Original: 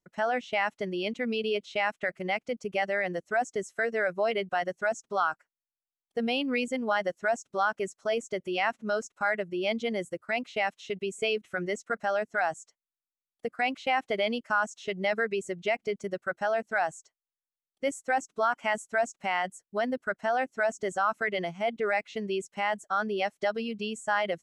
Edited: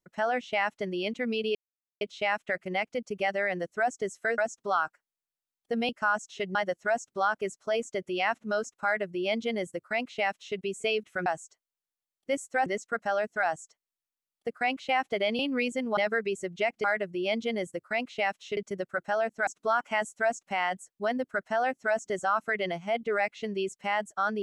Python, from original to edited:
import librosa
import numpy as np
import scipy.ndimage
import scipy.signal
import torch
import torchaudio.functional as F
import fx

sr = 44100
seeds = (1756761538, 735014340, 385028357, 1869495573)

y = fx.edit(x, sr, fx.insert_silence(at_s=1.55, length_s=0.46),
    fx.cut(start_s=3.92, length_s=0.92),
    fx.swap(start_s=6.35, length_s=0.58, other_s=14.37, other_length_s=0.66),
    fx.duplicate(start_s=9.22, length_s=1.73, to_s=15.9),
    fx.move(start_s=16.8, length_s=1.4, to_s=11.64), tone=tone)